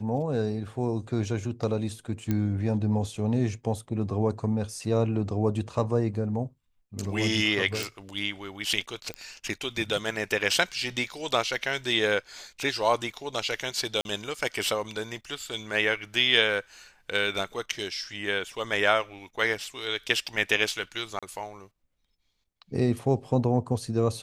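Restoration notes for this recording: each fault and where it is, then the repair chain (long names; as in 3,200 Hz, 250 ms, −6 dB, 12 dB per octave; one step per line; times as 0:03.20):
0:02.31: click −15 dBFS
0:07.83: click
0:09.14: click −19 dBFS
0:14.01–0:14.05: drop-out 41 ms
0:21.19–0:21.23: drop-out 36 ms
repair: click removal
repair the gap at 0:14.01, 41 ms
repair the gap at 0:21.19, 36 ms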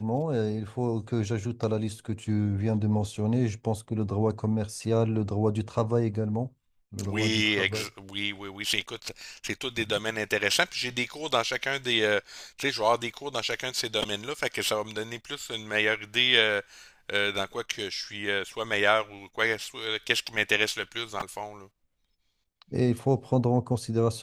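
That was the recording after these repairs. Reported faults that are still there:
none of them is left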